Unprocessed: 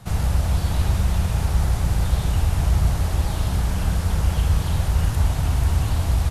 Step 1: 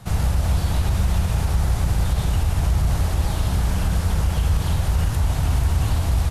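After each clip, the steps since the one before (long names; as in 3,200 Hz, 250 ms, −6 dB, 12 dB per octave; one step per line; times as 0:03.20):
brickwall limiter −13 dBFS, peak gain reduction 5.5 dB
level +1.5 dB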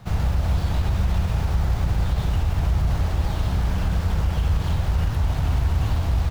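running median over 5 samples
level −1.5 dB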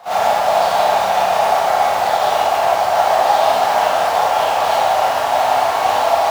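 high-pass with resonance 710 Hz, resonance Q 4.9
four-comb reverb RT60 0.7 s, combs from 28 ms, DRR −9.5 dB
level +4 dB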